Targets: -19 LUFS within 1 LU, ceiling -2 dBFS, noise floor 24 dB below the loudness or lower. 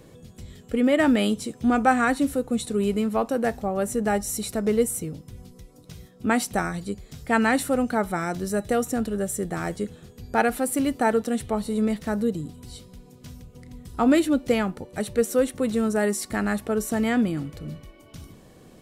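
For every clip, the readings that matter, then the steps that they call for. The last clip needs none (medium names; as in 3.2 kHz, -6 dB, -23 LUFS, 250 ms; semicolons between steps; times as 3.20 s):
loudness -24.5 LUFS; peak level -6.0 dBFS; loudness target -19.0 LUFS
-> trim +5.5 dB; peak limiter -2 dBFS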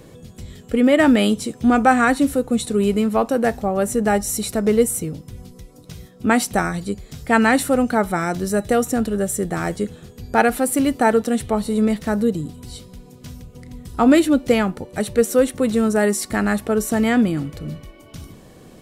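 loudness -19.0 LUFS; peak level -2.0 dBFS; noise floor -46 dBFS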